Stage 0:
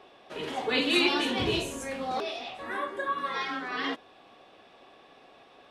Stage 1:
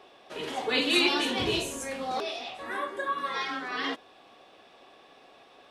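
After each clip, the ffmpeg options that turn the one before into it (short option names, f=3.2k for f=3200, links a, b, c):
-af "bass=f=250:g=-3,treble=f=4k:g=4"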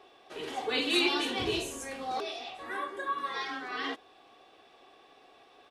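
-af "aecho=1:1:2.6:0.32,volume=-4dB"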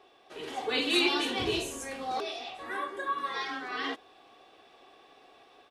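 -af "dynaudnorm=f=350:g=3:m=3.5dB,volume=-2.5dB"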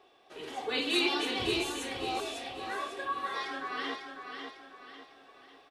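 -af "aecho=1:1:548|1096|1644|2192|2740:0.473|0.194|0.0795|0.0326|0.0134,volume=-2.5dB"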